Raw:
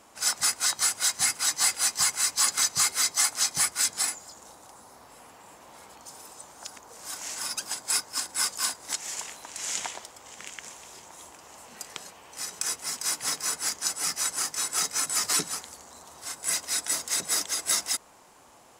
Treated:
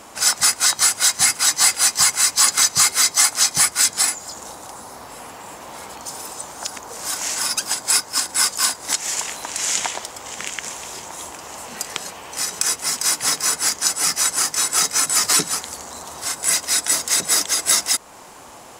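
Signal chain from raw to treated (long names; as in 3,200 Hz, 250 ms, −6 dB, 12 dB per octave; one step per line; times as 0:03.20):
in parallel at +1 dB: downward compressor, threshold −37 dBFS, peak gain reduction 17 dB
0:05.35–0:06.68: on the sum: floating-point word with a short mantissa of 4 bits
level +7 dB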